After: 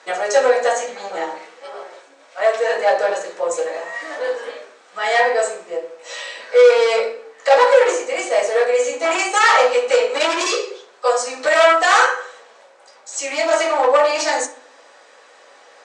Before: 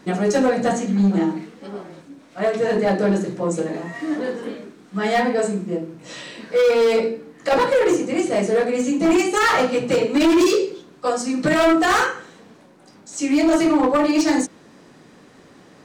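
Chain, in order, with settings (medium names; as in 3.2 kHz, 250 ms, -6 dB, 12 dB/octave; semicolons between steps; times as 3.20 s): elliptic band-pass 560–8100 Hz, stop band 60 dB; on a send: reverberation RT60 0.50 s, pre-delay 3 ms, DRR 4 dB; on the sum: trim +4.5 dB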